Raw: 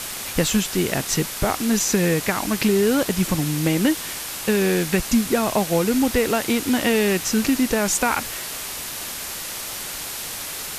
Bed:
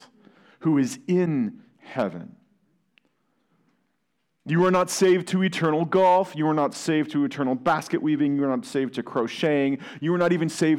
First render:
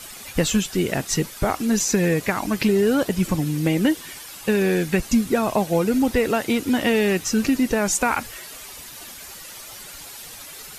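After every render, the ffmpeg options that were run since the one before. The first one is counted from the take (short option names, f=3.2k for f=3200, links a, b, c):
-af "afftdn=nr=11:nf=-31"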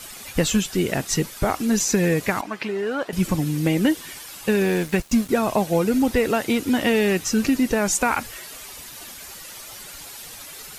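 -filter_complex "[0:a]asettb=1/sr,asplit=3[a][b][c];[a]atrim=end=2.414[d];[b]atrim=start=2.41:end=3.13,asetpts=PTS-STARTPTS,afade=t=in:d=0.004:c=qsin,afade=t=out:st=0.716:d=0.004:c=qsin,bandpass=f=1.2k:t=q:w=0.71[e];[c]atrim=start=3.126[f];[d][e]acrossfade=d=0.004:c1=hsin:c2=qsin[g];[g][f]acrossfade=d=0.004:c1=qsin:c2=hsin,asettb=1/sr,asplit=3[h][i][j];[h]atrim=end=4.644[k];[i]atrim=start=4.64:end=5.29,asetpts=PTS-STARTPTS,afade=t=in:d=0.004:c=qsin,afade=t=out:st=0.646:d=0.004:c=qsin,aeval=exprs='sgn(val(0))*max(abs(val(0))-0.0158,0)':c=same[l];[j]atrim=start=5.286[m];[k][l]acrossfade=d=0.004:c1=hsin:c2=qsin[n];[n][m]acrossfade=d=0.004:c1=qsin:c2=hsin"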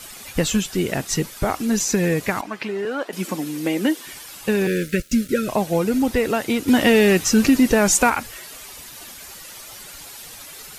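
-filter_complex "[0:a]asettb=1/sr,asplit=3[a][b][c];[a]atrim=end=2.854[d];[b]atrim=start=2.85:end=4.07,asetpts=PTS-STARTPTS,afade=t=in:d=0.004:c=qsin,afade=t=out:st=1.216:d=0.004:c=qsin,highpass=f=220:w=0.5412,highpass=f=220:w=1.3066[e];[c]atrim=start=4.066[f];[d][e]acrossfade=d=0.004:c1=hsin:c2=qsin[g];[g][f]acrossfade=d=0.004:c1=qsin:c2=hsin,asettb=1/sr,asplit=3[h][i][j];[h]atrim=end=4.674[k];[i]atrim=start=4.67:end=5.49,asetpts=PTS-STARTPTS,afade=t=in:d=0.004:c=qsin,afade=t=out:st=0.816:d=0.004:c=qsin,asuperstop=centerf=870:order=20:qfactor=1.3[l];[j]atrim=start=5.486[m];[k][l]acrossfade=d=0.004:c1=hsin:c2=qsin[n];[n][m]acrossfade=d=0.004:c1=qsin:c2=hsin,asettb=1/sr,asplit=3[o][p][q];[o]atrim=end=6.684[r];[p]atrim=start=6.68:end=8.1,asetpts=PTS-STARTPTS,afade=t=in:d=0.004:c=qsin,afade=t=out:st=1.416:d=0.004:c=qsin,acontrast=32[s];[q]atrim=start=8.096[t];[r][s]acrossfade=d=0.004:c1=hsin:c2=qsin[u];[u][t]acrossfade=d=0.004:c1=qsin:c2=hsin"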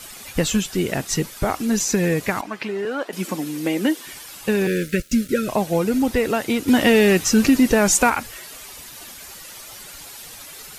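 -af anull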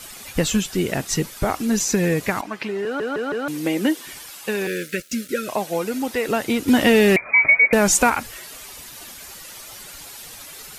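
-filter_complex "[0:a]asettb=1/sr,asplit=3[a][b][c];[a]atrim=end=4.304[d];[b]atrim=start=4.3:end=6.29,asetpts=PTS-STARTPTS,afade=t=in:d=0.004:c=qsin,afade=t=out:st=1.986:d=0.004:c=qsin,highpass=f=490:p=1[e];[c]atrim=start=6.286[f];[d][e]acrossfade=d=0.004:c1=hsin:c2=qsin[g];[g][f]acrossfade=d=0.004:c1=qsin:c2=hsin,asettb=1/sr,asplit=3[h][i][j];[h]atrim=end=7.164[k];[i]atrim=start=7.16:end=7.73,asetpts=PTS-STARTPTS,afade=t=in:d=0.004:c=qsin,afade=t=out:st=0.566:d=0.004:c=qsin,lowpass=f=2.1k:t=q:w=0.5098,lowpass=f=2.1k:t=q:w=0.6013,lowpass=f=2.1k:t=q:w=0.9,lowpass=f=2.1k:t=q:w=2.563,afreqshift=-2500[l];[j]atrim=start=7.726[m];[k][l]acrossfade=d=0.004:c1=hsin:c2=qsin[n];[n][m]acrossfade=d=0.004:c1=qsin:c2=hsin,asplit=5[o][p][q][r][s];[o]atrim=end=3.002[t];[p]atrim=start=2.838:end=3.002[u];[q]atrim=start=2.838:end=3.002[v];[r]atrim=start=2.838:end=3.002[w];[s]atrim=start=3.478[x];[t][u]acrossfade=d=0.004:c1=hsin:c2=hsin[y];[y][v]acrossfade=d=0.004:c1=hsin:c2=hsin[z];[z][w]acrossfade=d=0.004:c1=hsin:c2=hsin[aa];[aa][x]acrossfade=d=0.004:c1=hsin:c2=hsin"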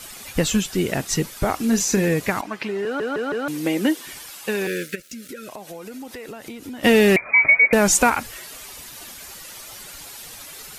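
-filter_complex "[0:a]asettb=1/sr,asplit=3[a][b][c];[a]atrim=end=1.594[d];[b]atrim=start=1.59:end=2.08,asetpts=PTS-STARTPTS,afade=t=in:d=0.004:c=qsin,afade=t=out:st=0.486:d=0.004:c=qsin,asplit=2[e][f];[f]adelay=31,volume=-10.5dB[g];[e][g]amix=inputs=2:normalize=0,atrim=end_sample=21609[h];[c]atrim=start=2.076[i];[d][h]acrossfade=d=0.004:c1=hsin:c2=qsin[j];[j][i]acrossfade=d=0.004:c1=qsin:c2=hsin,asplit=3[k][l][m];[k]afade=t=out:st=4.94:d=0.02[n];[l]acompressor=threshold=-33dB:ratio=6:attack=3.2:release=140:knee=1:detection=peak,afade=t=in:st=4.94:d=0.02,afade=t=out:st=6.83:d=0.02[o];[m]afade=t=in:st=6.83:d=0.02[p];[n][o][p]amix=inputs=3:normalize=0"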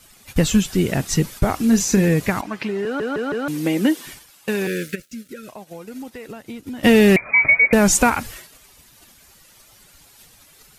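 -af "agate=range=-12dB:threshold=-36dB:ratio=16:detection=peak,bass=f=250:g=7,treble=f=4k:g=0"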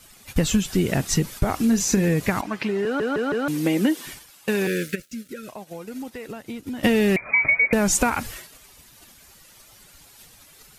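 -af "acompressor=threshold=-16dB:ratio=5"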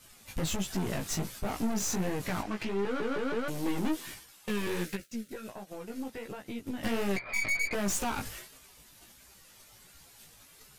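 -af "aeval=exprs='(tanh(20*val(0)+0.6)-tanh(0.6))/20':c=same,flanger=delay=15:depth=4.3:speed=1.4"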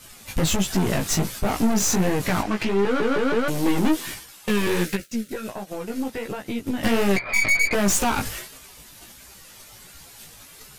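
-af "volume=10.5dB"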